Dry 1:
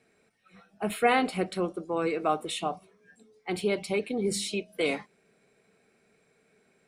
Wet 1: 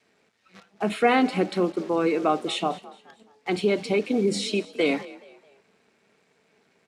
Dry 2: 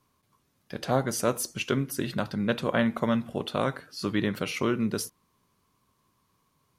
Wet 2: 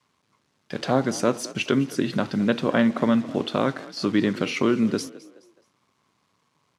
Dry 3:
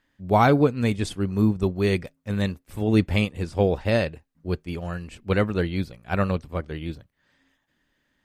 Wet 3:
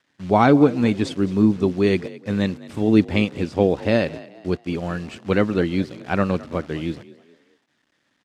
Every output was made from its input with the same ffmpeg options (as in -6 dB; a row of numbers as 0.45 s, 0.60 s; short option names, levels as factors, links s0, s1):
-filter_complex "[0:a]adynamicequalizer=threshold=0.0158:dfrequency=280:dqfactor=1.6:tfrequency=280:tqfactor=1.6:attack=5:release=100:ratio=0.375:range=3:mode=boostabove:tftype=bell,asplit=2[s0][s1];[s1]acompressor=threshold=0.0355:ratio=10,volume=1.06[s2];[s0][s2]amix=inputs=2:normalize=0,acrusher=bits=8:dc=4:mix=0:aa=0.000001,highpass=120,lowpass=6200,asplit=4[s3][s4][s5][s6];[s4]adelay=212,afreqshift=43,volume=0.112[s7];[s5]adelay=424,afreqshift=86,volume=0.0417[s8];[s6]adelay=636,afreqshift=129,volume=0.0153[s9];[s3][s7][s8][s9]amix=inputs=4:normalize=0"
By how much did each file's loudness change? +5.0 LU, +5.0 LU, +3.5 LU